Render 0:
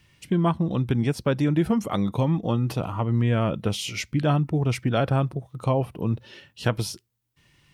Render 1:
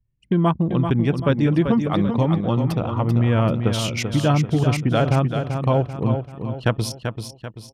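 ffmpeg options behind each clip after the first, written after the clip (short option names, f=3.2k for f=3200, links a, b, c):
-filter_complex "[0:a]anlmdn=10,asplit=2[a][b];[b]aecho=0:1:388|776|1164|1552|1940:0.447|0.197|0.0865|0.0381|0.0167[c];[a][c]amix=inputs=2:normalize=0,volume=3.5dB"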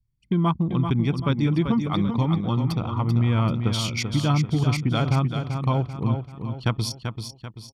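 -af "equalizer=f=4.5k:t=o:w=0.67:g=7,aecho=1:1:0.9:0.49,volume=-5dB"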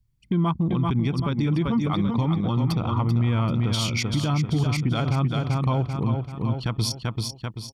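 -af "alimiter=limit=-20.5dB:level=0:latency=1:release=118,volume=5.5dB"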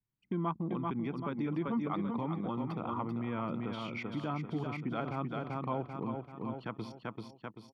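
-filter_complex "[0:a]acrossover=split=190 2500:gain=0.0794 1 0.1[a][b][c];[a][b][c]amix=inputs=3:normalize=0,acrossover=split=3800[d][e];[e]acompressor=threshold=-54dB:ratio=4:attack=1:release=60[f];[d][f]amix=inputs=2:normalize=0,volume=-7dB"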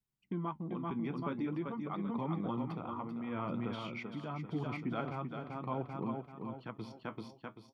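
-af "flanger=delay=4.6:depth=8.3:regen=-57:speed=0.48:shape=sinusoidal,tremolo=f=0.83:d=0.4,volume=3.5dB"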